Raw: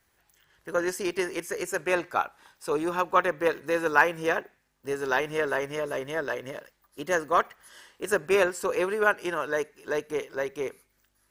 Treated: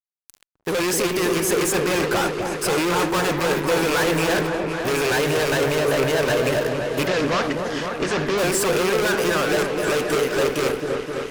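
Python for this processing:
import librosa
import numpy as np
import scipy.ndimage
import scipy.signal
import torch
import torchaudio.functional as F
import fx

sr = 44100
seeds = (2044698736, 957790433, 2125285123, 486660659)

y = fx.rattle_buzz(x, sr, strikes_db=-40.0, level_db=-23.0)
y = fx.fuzz(y, sr, gain_db=46.0, gate_db=-52.0)
y = fx.lowpass(y, sr, hz=6100.0, slope=24, at=(7.07, 8.38))
y = fx.echo_opening(y, sr, ms=258, hz=750, octaves=1, feedback_pct=70, wet_db=-3)
y = y * librosa.db_to_amplitude(-7.5)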